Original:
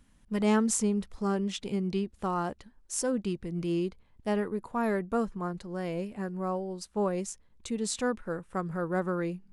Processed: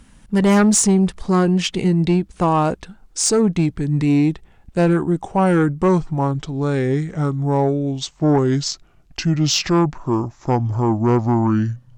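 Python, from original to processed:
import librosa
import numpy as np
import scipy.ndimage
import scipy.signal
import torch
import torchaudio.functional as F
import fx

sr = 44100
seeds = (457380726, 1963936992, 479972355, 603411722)

y = fx.speed_glide(x, sr, from_pct=96, to_pct=63)
y = fx.cheby_harmonics(y, sr, harmonics=(5,), levels_db=(-12,), full_scale_db=-13.5)
y = F.gain(torch.from_numpy(y), 8.0).numpy()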